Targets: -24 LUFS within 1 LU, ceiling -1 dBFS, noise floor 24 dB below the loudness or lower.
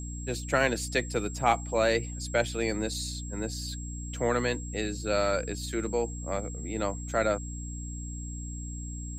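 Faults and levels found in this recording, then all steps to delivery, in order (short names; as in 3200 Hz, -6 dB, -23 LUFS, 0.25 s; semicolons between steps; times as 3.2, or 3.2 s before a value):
hum 60 Hz; harmonics up to 300 Hz; hum level -35 dBFS; steady tone 7600 Hz; tone level -43 dBFS; loudness -30.5 LUFS; peak -10.0 dBFS; loudness target -24.0 LUFS
-> notches 60/120/180/240/300 Hz; notch 7600 Hz, Q 30; gain +6.5 dB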